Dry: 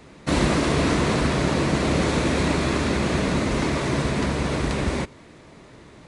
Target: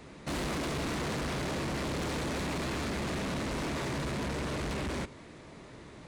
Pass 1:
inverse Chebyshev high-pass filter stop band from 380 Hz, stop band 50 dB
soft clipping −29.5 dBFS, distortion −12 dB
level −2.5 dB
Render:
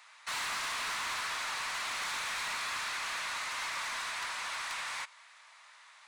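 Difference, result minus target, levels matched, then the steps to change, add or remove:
500 Hz band −16.0 dB
remove: inverse Chebyshev high-pass filter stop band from 380 Hz, stop band 50 dB

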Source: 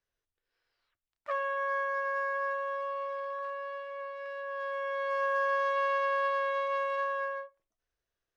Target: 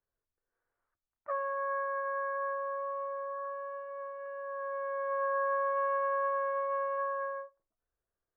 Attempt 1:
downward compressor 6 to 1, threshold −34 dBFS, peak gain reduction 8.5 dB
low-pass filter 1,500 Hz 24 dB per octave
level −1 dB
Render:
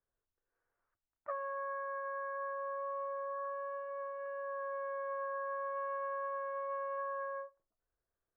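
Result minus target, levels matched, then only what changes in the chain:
downward compressor: peak gain reduction +8.5 dB
remove: downward compressor 6 to 1, threshold −34 dBFS, peak gain reduction 8.5 dB

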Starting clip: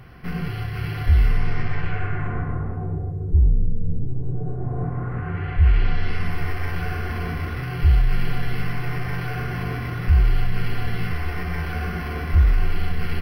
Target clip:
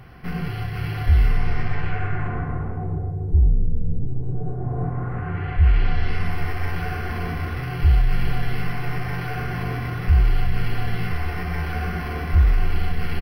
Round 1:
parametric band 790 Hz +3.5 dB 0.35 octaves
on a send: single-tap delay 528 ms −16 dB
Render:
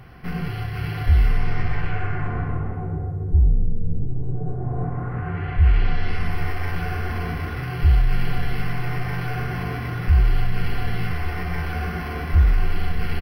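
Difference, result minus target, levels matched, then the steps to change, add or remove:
echo 166 ms late
change: single-tap delay 362 ms −16 dB

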